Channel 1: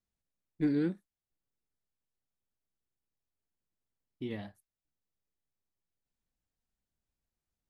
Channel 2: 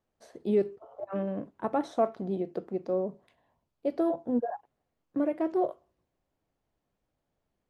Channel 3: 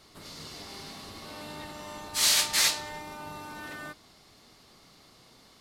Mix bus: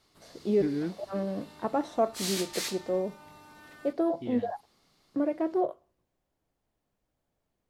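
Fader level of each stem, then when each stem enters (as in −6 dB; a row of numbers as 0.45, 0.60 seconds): −1.5, 0.0, −11.0 decibels; 0.00, 0.00, 0.00 seconds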